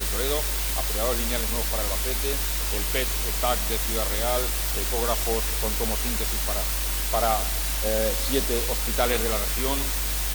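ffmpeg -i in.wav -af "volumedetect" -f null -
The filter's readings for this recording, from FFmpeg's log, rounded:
mean_volume: -24.9 dB
max_volume: -7.9 dB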